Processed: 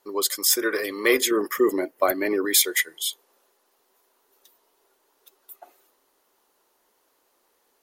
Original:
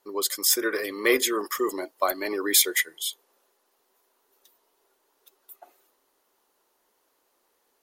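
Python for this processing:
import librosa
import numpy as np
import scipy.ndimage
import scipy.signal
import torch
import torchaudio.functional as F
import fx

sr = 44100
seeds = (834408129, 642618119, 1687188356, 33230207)

p1 = fx.graphic_eq_10(x, sr, hz=(125, 250, 500, 1000, 2000, 4000, 8000), db=(8, 5, 3, -5, 5, -8, -5), at=(1.31, 2.45))
p2 = fx.rider(p1, sr, range_db=10, speed_s=0.5)
p3 = p1 + (p2 * 10.0 ** (-0.5 / 20.0))
y = p3 * 10.0 ** (-4.0 / 20.0)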